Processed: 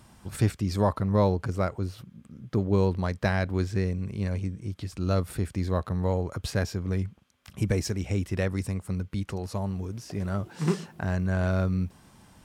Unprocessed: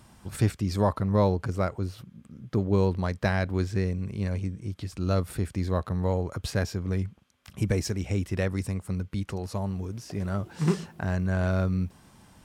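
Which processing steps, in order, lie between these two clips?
10.50–10.92 s: high-pass 140 Hz

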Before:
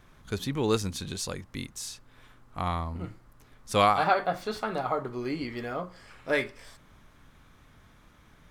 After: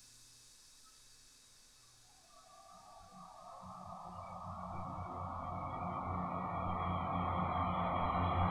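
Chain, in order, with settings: Paulstretch 27×, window 1.00 s, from 2.09 s; spectral noise reduction 19 dB; trim +5 dB

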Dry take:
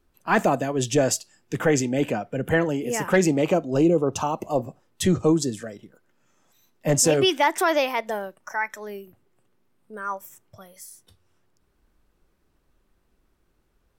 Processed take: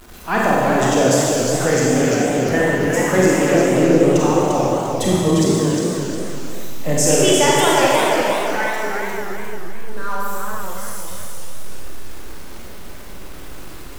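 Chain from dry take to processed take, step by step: jump at every zero crossing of -36 dBFS; Schroeder reverb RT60 2.4 s, combs from 31 ms, DRR -5 dB; modulated delay 351 ms, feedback 36%, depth 158 cents, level -5 dB; trim -1 dB

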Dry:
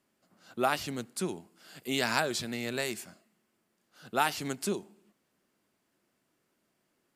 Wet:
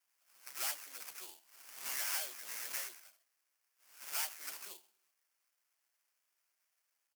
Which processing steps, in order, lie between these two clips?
delay that grows with frequency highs early, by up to 166 ms; high-pass 560 Hz 12 dB/octave; low-pass that closes with the level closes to 2.5 kHz, closed at -28.5 dBFS; sample-rate reducer 3.8 kHz, jitter 20%; valve stage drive 31 dB, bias 0.4; differentiator; trim +6 dB

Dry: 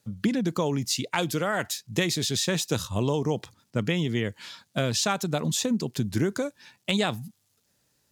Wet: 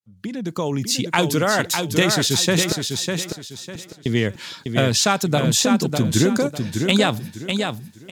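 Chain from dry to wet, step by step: fade-in on the opening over 1.16 s; 2.72–4.06 s: inverted gate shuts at -31 dBFS, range -37 dB; feedback delay 601 ms, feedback 29%, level -5.5 dB; trim +7.5 dB

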